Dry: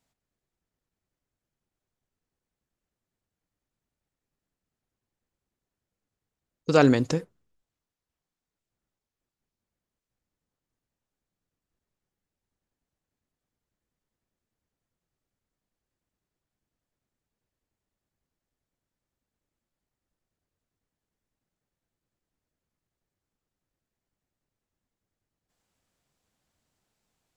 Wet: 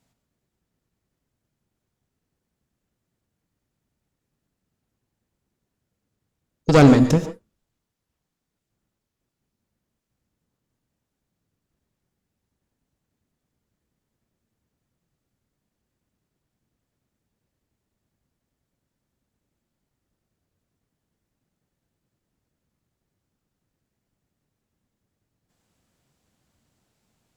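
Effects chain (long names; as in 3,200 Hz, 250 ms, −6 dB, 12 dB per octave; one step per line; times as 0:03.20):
harmonic generator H 4 −13 dB, 5 −16 dB, 8 −21 dB, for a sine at −5.5 dBFS
parametric band 150 Hz +6.5 dB 2.4 octaves
reverb whose tail is shaped and stops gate 160 ms rising, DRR 9.5 dB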